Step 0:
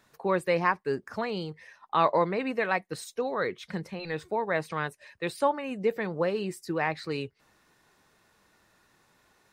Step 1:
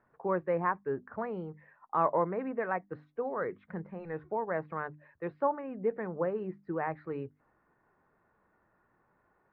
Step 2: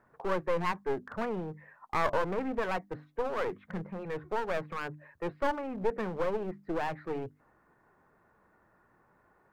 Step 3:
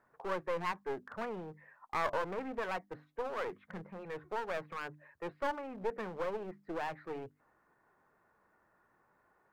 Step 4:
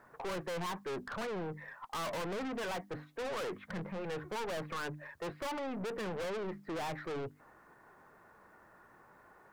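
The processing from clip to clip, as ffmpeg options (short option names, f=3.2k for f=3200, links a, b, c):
-af "lowpass=f=1.6k:w=0.5412,lowpass=f=1.6k:w=1.3066,bandreject=f=50:t=h:w=6,bandreject=f=100:t=h:w=6,bandreject=f=150:t=h:w=6,bandreject=f=200:t=h:w=6,bandreject=f=250:t=h:w=6,bandreject=f=300:t=h:w=6,volume=-4dB"
-filter_complex "[0:a]asplit=2[a][b];[b]alimiter=limit=-23dB:level=0:latency=1,volume=-2.5dB[c];[a][c]amix=inputs=2:normalize=0,aeval=exprs='clip(val(0),-1,0.0158)':c=same"
-af "lowshelf=f=340:g=-7,volume=-3.5dB"
-af "aeval=exprs='(tanh(251*val(0)+0.2)-tanh(0.2))/251':c=same,volume=11.5dB"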